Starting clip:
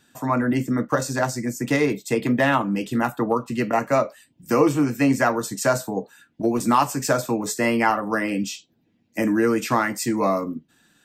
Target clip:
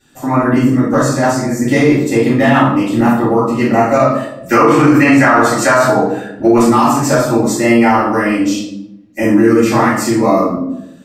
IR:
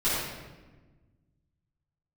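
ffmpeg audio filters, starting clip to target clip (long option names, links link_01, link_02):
-filter_complex "[0:a]asettb=1/sr,asplit=3[link_01][link_02][link_03];[link_01]atrim=end=4.054[link_04];[link_02]atrim=start=4.05:end=6.63,asetpts=PTS-STARTPTS,afade=type=in:duration=0.004:curve=qsin,afade=type=out:start_time=2.576:duration=0.004:curve=qsin,equalizer=frequency=1600:width=0.55:gain=13[link_05];[link_03]atrim=start=6.626[link_06];[link_04][link_05]acrossfade=duration=0.004:curve1=hsin:curve2=qsin[link_07];[link_07][link_06]acrossfade=duration=0.004:curve1=qsin:curve2=hsin[link_08];[1:a]atrim=start_sample=2205,asetrate=88200,aresample=44100[link_09];[link_08][link_09]afir=irnorm=-1:irlink=0,alimiter=limit=-3dB:level=0:latency=1:release=35,volume=2dB"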